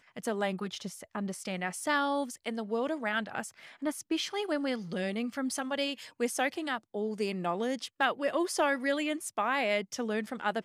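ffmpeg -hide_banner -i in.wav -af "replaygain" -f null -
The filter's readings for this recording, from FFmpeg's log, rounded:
track_gain = +12.7 dB
track_peak = 0.130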